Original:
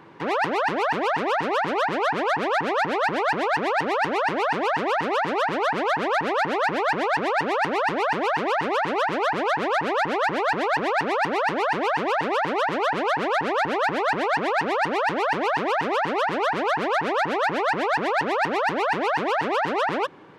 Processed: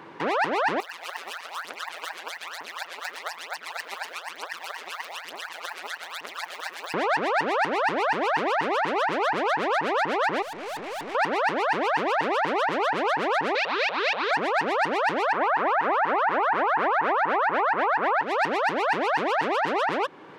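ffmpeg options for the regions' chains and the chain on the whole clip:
ffmpeg -i in.wav -filter_complex "[0:a]asettb=1/sr,asplit=3[link_01][link_02][link_03];[link_01]atrim=end=0.804[link_04];[link_02]atrim=start=0.8:end=6.94,asetpts=PTS-STARTPTS,afade=type=in:duration=0.004:curve=qsin,afade=type=out:start_time=6.136:duration=0.004:curve=qsin,aphaser=in_gain=1:out_gain=1:delay=2.8:decay=0.7:speed=1.1:type=triangular,tremolo=f=170:d=0.974,aderivative[link_05];[link_03]atrim=start=6.936[link_06];[link_04][link_05]acrossfade=duration=0.004:curve1=hsin:curve2=qsin[link_07];[link_07][link_06]acrossfade=duration=0.004:curve1=qsin:curve2=hsin,asettb=1/sr,asplit=3[link_08][link_09][link_10];[link_08]atrim=end=10.424[link_11];[link_09]atrim=start=10.42:end=11.15,asetpts=PTS-STARTPTS,afade=type=in:duration=0.004:curve=qsin,afade=type=out:start_time=0.726:duration=0.004:curve=qsin,lowpass=3500,aeval=exprs='(tanh(56.2*val(0)+0.3)-tanh(0.3))/56.2':channel_layout=same[link_12];[link_10]atrim=start=11.146[link_13];[link_11][link_12]acrossfade=duration=0.004:curve1=hsin:curve2=qsin[link_14];[link_14][link_13]acrossfade=duration=0.004:curve1=qsin:curve2=hsin,asettb=1/sr,asplit=3[link_15][link_16][link_17];[link_15]atrim=end=13.554[link_18];[link_16]atrim=start=13.55:end=14.31,asetpts=PTS-STARTPTS,afade=type=in:duration=0.004:curve=qsin,afade=type=out:start_time=0.756:duration=0.004:curve=qsin,adynamicsmooth=sensitivity=1:basefreq=560,aeval=exprs='abs(val(0))':channel_layout=same,highpass=420,equalizer=frequency=470:width_type=q:width=4:gain=4,equalizer=frequency=710:width_type=q:width=4:gain=-4,equalizer=frequency=2500:width_type=q:width=4:gain=9,equalizer=frequency=3900:width_type=q:width=4:gain=8,lowpass=frequency=5000:width=0.5412,lowpass=frequency=5000:width=1.3066[link_19];[link_17]atrim=start=14.306[link_20];[link_18][link_19]acrossfade=duration=0.004:curve1=hsin:curve2=qsin[link_21];[link_21][link_20]acrossfade=duration=0.004:curve1=qsin:curve2=hsin,asettb=1/sr,asplit=3[link_22][link_23][link_24];[link_22]atrim=end=15.324[link_25];[link_23]atrim=start=15.32:end=18.23,asetpts=PTS-STARTPTS,afade=type=in:duration=0.004:curve=qsin,afade=type=out:start_time=2.906:duration=0.004:curve=qsin,lowpass=frequency=2200:poles=1,equalizer=frequency=1200:width_type=o:width=2.2:gain=12[link_26];[link_24]atrim=start=18.226[link_27];[link_25][link_26]acrossfade=duration=0.004:curve1=hsin:curve2=qsin[link_28];[link_28][link_27]acrossfade=duration=0.004:curve1=qsin:curve2=hsin,lowshelf=frequency=150:gain=-12,alimiter=limit=-20dB:level=0:latency=1:release=300,volume=4.5dB" out.wav

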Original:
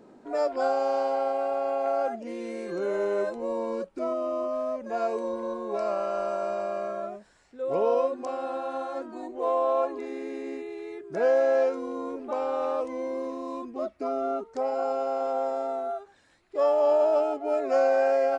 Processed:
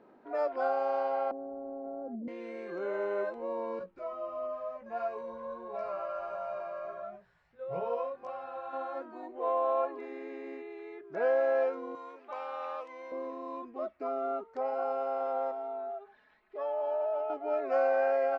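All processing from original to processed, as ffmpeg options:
ffmpeg -i in.wav -filter_complex "[0:a]asettb=1/sr,asplit=3[link_01][link_02][link_03];[link_01]atrim=end=1.314[link_04];[link_02]atrim=start=1.31:end=2.28,asetpts=PTS-STARTPTS,afade=type=in:duration=0.004:curve=qsin,afade=type=out:start_time=0.966:duration=0.004:curve=qsin,acontrast=72,lowpass=frequency=220:width_type=q:width=1.9[link_05];[link_03]atrim=start=2.276[link_06];[link_04][link_05]acrossfade=duration=0.004:curve1=hsin:curve2=qsin[link_07];[link_07][link_06]acrossfade=duration=0.004:curve1=qsin:curve2=hsin,asettb=1/sr,asplit=3[link_08][link_09][link_10];[link_08]atrim=end=3.794[link_11];[link_09]atrim=start=3.79:end=8.73,asetpts=PTS-STARTPTS,afade=type=in:duration=0.004:curve=qsin,afade=type=out:start_time=4.936:duration=0.004:curve=qsin,lowshelf=frequency=200:width_type=q:width=3:gain=10,bandreject=frequency=50:width_type=h:width=6,bandreject=frequency=100:width_type=h:width=6,bandreject=frequency=150:width_type=h:width=6,bandreject=frequency=200:width_type=h:width=6,bandreject=frequency=250:width_type=h:width=6,bandreject=frequency=300:width_type=h:width=6,bandreject=frequency=350:width_type=h:width=6,bandreject=frequency=400:width_type=h:width=6,bandreject=frequency=450:width_type=h:width=6,flanger=delay=16:depth=2.2:speed=1.5[link_12];[link_10]atrim=start=8.726[link_13];[link_11][link_12]acrossfade=duration=0.004:curve1=hsin:curve2=qsin[link_14];[link_14][link_13]acrossfade=duration=0.004:curve1=qsin:curve2=hsin,asettb=1/sr,asplit=3[link_15][link_16][link_17];[link_15]atrim=end=11.954[link_18];[link_16]atrim=start=11.95:end=13.12,asetpts=PTS-STARTPTS,afade=type=in:duration=0.004:curve=qsin,afade=type=out:start_time=1.166:duration=0.004:curve=qsin,highpass=frequency=700:poles=1,tiltshelf=frequency=1300:gain=-5.5[link_19];[link_17]atrim=start=13.116[link_20];[link_18][link_19]acrossfade=duration=0.004:curve1=hsin:curve2=qsin[link_21];[link_21][link_20]acrossfade=duration=0.004:curve1=qsin:curve2=hsin,asettb=1/sr,asplit=3[link_22][link_23][link_24];[link_22]atrim=end=15.514[link_25];[link_23]atrim=start=15.51:end=17.3,asetpts=PTS-STARTPTS,afade=type=in:duration=0.004:curve=qsin,afade=type=out:start_time=1.786:duration=0.004:curve=qsin,lowpass=4200,aecho=1:1:4.7:0.89,atrim=end_sample=78939,acompressor=threshold=-42dB:ratio=1.5:attack=3.2:release=140:knee=1:detection=peak[link_26];[link_24]atrim=start=17.296[link_27];[link_25][link_26]acrossfade=duration=0.004:curve1=hsin:curve2=qsin[link_28];[link_28][link_27]acrossfade=duration=0.004:curve1=qsin:curve2=hsin,lowpass=2300,lowshelf=frequency=410:gain=-11.5,volume=-1dB" out.wav

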